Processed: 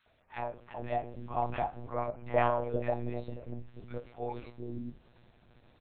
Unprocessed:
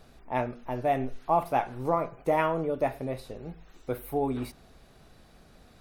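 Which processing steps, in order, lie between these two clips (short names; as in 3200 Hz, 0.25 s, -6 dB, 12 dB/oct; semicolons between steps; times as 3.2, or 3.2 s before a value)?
2.01–3.51 comb 6.4 ms, depth 94%; three bands offset in time highs, mids, lows 60/460 ms, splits 350/1200 Hz; monotone LPC vocoder at 8 kHz 120 Hz; gain -5.5 dB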